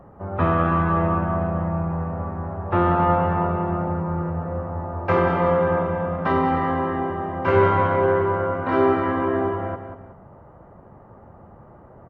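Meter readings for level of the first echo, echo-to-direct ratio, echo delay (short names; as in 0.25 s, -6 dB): -9.0 dB, -8.5 dB, 0.187 s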